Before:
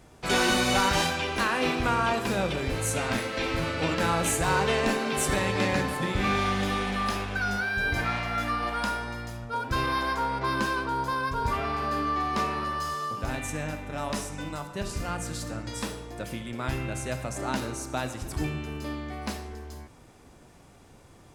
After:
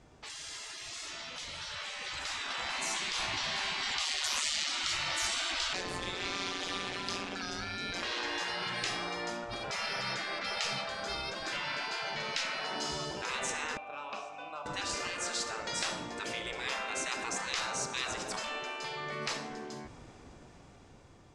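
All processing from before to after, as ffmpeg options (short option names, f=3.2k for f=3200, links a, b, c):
-filter_complex "[0:a]asettb=1/sr,asplit=3[a][b][c];[a]atrim=end=4.054[d];[b]atrim=start=4.05:end=4.69,asetpts=PTS-STARTPTS,afade=t=in:d=0.004:c=qsin,afade=t=out:st=0.636:d=0.004:c=qsin,bandreject=f=58.81:t=h:w=4,bandreject=f=117.62:t=h:w=4,bandreject=f=176.43:t=h:w=4,acontrast=76,tremolo=f=150:d=0.75[e];[c]atrim=start=4.686[f];[d][e]acrossfade=d=0.004:c1=hsin:c2=qsin[g];[g][f]acrossfade=d=0.004:c1=qsin:c2=hsin,asettb=1/sr,asplit=3[h][i][j];[h]atrim=end=5.734[k];[i]atrim=start=5.73:end=8.03,asetpts=PTS-STARTPTS,afade=t=in:d=0.004:c=qsin,afade=t=out:st=2.296:d=0.004:c=qsin,acrossover=split=140|3000[l][m][n];[m]acompressor=threshold=-40dB:ratio=4:attack=3.2:release=140:knee=2.83:detection=peak[o];[l][o][n]amix=inputs=3:normalize=0,tremolo=f=180:d=0.889[p];[j]atrim=start=8.026[q];[k][p]acrossfade=d=0.004:c1=hsin:c2=qsin[r];[r][q]acrossfade=d=0.004:c1=qsin:c2=hsin,asettb=1/sr,asplit=3[s][t][u];[s]atrim=end=13.774[v];[t]atrim=start=13.77:end=14.66,asetpts=PTS-STARTPTS,afade=t=in:d=0.004:c=qsin,afade=t=out:st=0.886:d=0.004:c=qsin,lowshelf=f=490:g=-11,acontrast=27,asplit=3[w][x][y];[w]bandpass=f=730:t=q:w=8,volume=0dB[z];[x]bandpass=f=1.09k:t=q:w=8,volume=-6dB[aa];[y]bandpass=f=2.44k:t=q:w=8,volume=-9dB[ab];[z][aa][ab]amix=inputs=3:normalize=0[ac];[u]atrim=start=14.656[ad];[v][ac]acrossfade=d=0.004:c1=hsin:c2=qsin[ae];[ae][ad]acrossfade=d=0.004:c1=qsin:c2=hsin,afftfilt=real='re*lt(hypot(re,im),0.0447)':imag='im*lt(hypot(re,im),0.0447)':win_size=1024:overlap=0.75,lowpass=f=7.5k:w=0.5412,lowpass=f=7.5k:w=1.3066,dynaudnorm=f=660:g=7:m=11dB,volume=-5.5dB"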